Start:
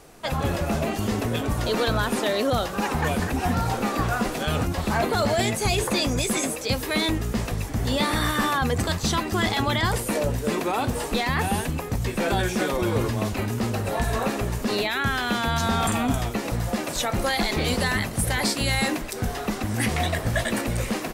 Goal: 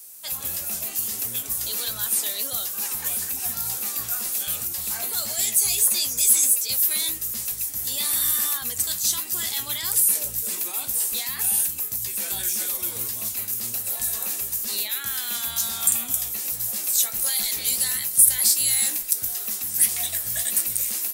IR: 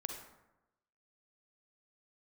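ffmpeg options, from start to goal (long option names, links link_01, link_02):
-af "crystalizer=i=8.5:c=0,aemphasis=mode=production:type=75fm,flanger=delay=8.3:depth=9:regen=65:speed=1.5:shape=sinusoidal,volume=-16dB"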